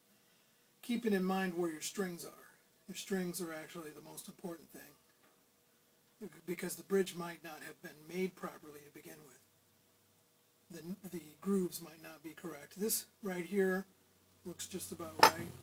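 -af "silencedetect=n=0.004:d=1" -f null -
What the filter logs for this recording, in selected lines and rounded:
silence_start: 4.89
silence_end: 6.21 | silence_duration: 1.32
silence_start: 9.32
silence_end: 10.71 | silence_duration: 1.38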